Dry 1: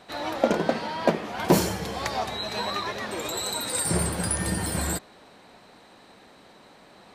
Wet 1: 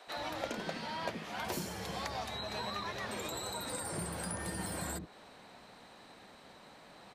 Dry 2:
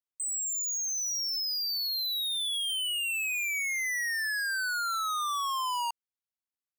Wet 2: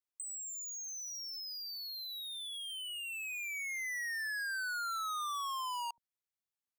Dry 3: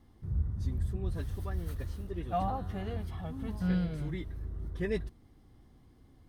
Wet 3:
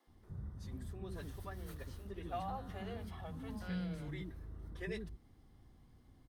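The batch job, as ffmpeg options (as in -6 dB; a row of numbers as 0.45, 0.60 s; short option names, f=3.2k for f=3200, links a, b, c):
-filter_complex "[0:a]acrossover=split=190|1600[a][b][c];[a]acompressor=threshold=-44dB:ratio=4[d];[b]acompressor=threshold=-36dB:ratio=4[e];[c]acompressor=threshold=-40dB:ratio=4[f];[d][e][f]amix=inputs=3:normalize=0,acrossover=split=350[g][h];[g]adelay=70[i];[i][h]amix=inputs=2:normalize=0,volume=-3dB"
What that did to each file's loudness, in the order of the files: -12.0, -9.0, -9.5 LU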